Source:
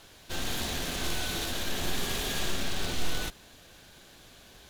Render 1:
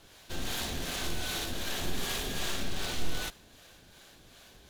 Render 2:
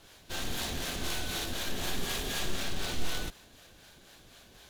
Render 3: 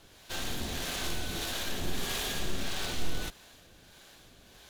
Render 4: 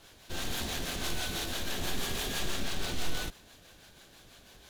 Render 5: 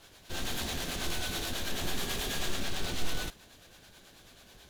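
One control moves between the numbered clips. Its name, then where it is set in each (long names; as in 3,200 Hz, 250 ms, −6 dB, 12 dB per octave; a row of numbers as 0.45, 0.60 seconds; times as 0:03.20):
two-band tremolo in antiphase, speed: 2.6, 4, 1.6, 6.1, 9.2 Hertz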